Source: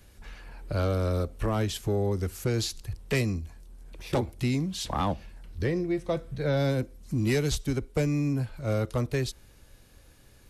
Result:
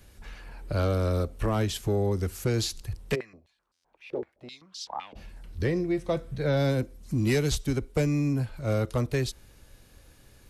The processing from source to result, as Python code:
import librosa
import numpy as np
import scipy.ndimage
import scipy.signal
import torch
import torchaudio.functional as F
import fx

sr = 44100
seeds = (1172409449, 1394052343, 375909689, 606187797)

y = fx.buffer_glitch(x, sr, at_s=(3.73,), block=512, repeats=8)
y = fx.filter_held_bandpass(y, sr, hz=7.8, low_hz=420.0, high_hz=5100.0, at=(3.14, 5.15), fade=0.02)
y = F.gain(torch.from_numpy(y), 1.0).numpy()